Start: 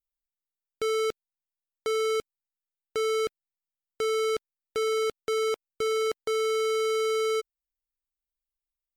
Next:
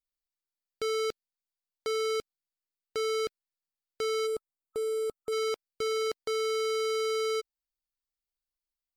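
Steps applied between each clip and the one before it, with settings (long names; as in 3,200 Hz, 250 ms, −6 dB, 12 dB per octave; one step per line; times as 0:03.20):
gain on a spectral selection 0:04.27–0:05.32, 1,300–7,100 Hz −13 dB
parametric band 4,600 Hz +7 dB 0.39 octaves
level −3.5 dB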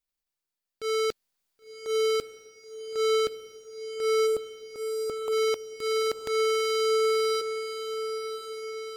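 transient designer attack −10 dB, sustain +9 dB
feedback delay with all-pass diffusion 1,049 ms, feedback 58%, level −9 dB
level +4 dB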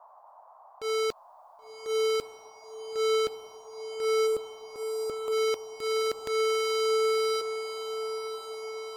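noise in a band 620–1,100 Hz −52 dBFS
level −1.5 dB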